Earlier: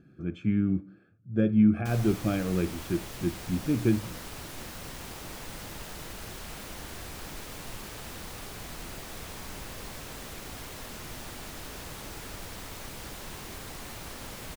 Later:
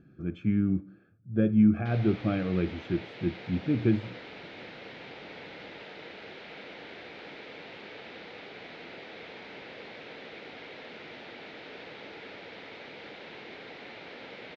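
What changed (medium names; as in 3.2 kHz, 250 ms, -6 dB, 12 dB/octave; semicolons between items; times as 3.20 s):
background: add cabinet simulation 260–4100 Hz, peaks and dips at 470 Hz +5 dB, 1.1 kHz -9 dB, 2.2 kHz +6 dB, 3.8 kHz +3 dB; master: add distance through air 120 m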